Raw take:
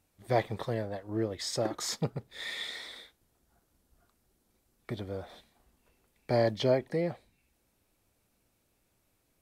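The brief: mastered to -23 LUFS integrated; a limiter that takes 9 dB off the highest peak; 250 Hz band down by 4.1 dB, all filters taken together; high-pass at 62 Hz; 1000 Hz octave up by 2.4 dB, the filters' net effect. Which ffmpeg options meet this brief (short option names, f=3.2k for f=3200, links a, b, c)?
-af "highpass=62,equalizer=f=250:t=o:g=-6.5,equalizer=f=1k:t=o:g=4.5,volume=12.5dB,alimiter=limit=-9.5dB:level=0:latency=1"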